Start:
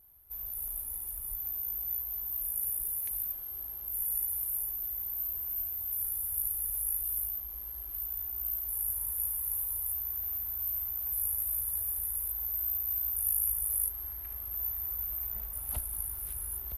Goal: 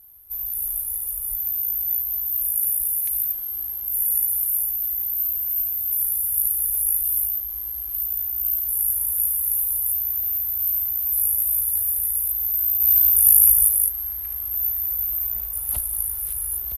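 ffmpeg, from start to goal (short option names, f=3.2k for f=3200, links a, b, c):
-filter_complex "[0:a]highshelf=f=3.2k:g=8,asplit=3[a][b][c];[a]afade=t=out:st=12.8:d=0.02[d];[b]acontrast=42,afade=t=in:st=12.8:d=0.02,afade=t=out:st=13.68:d=0.02[e];[c]afade=t=in:st=13.68:d=0.02[f];[d][e][f]amix=inputs=3:normalize=0,aresample=32000,aresample=44100,volume=3.5dB"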